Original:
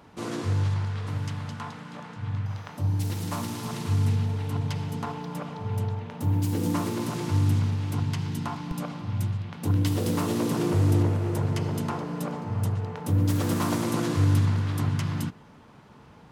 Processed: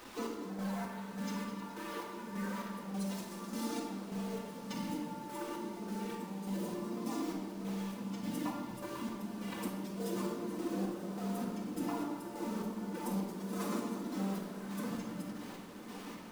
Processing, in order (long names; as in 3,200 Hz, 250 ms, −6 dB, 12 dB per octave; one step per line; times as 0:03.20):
wavefolder on the positive side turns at −22.5 dBFS
high-pass filter 240 Hz 6 dB per octave
gate on every frequency bin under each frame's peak −30 dB strong
dynamic equaliser 2,500 Hz, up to −6 dB, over −51 dBFS, Q 0.85
downward compressor 3 to 1, threshold −41 dBFS, peak gain reduction 11.5 dB
phase-vocoder pitch shift with formants kept +12 semitones
bit reduction 9 bits
square-wave tremolo 1.7 Hz, depth 60%, duty 45%
feedback delay with all-pass diffusion 1,056 ms, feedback 68%, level −13.5 dB
rectangular room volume 1,300 cubic metres, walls mixed, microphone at 2 metres
level +1.5 dB